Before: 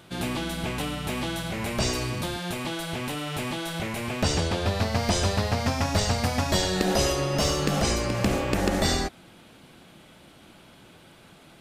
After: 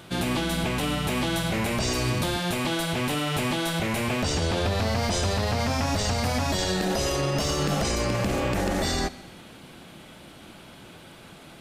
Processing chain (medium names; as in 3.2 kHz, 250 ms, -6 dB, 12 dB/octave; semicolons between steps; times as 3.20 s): peak limiter -22 dBFS, peak gain reduction 10.5 dB; Schroeder reverb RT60 1.3 s, combs from 32 ms, DRR 18.5 dB; trim +5 dB